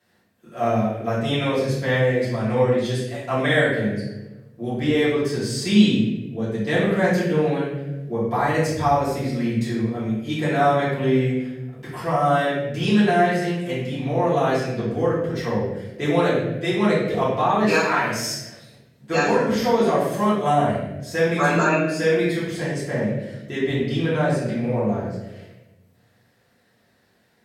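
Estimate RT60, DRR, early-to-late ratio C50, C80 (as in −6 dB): 1.1 s, −10.5 dB, 0.5 dB, 4.0 dB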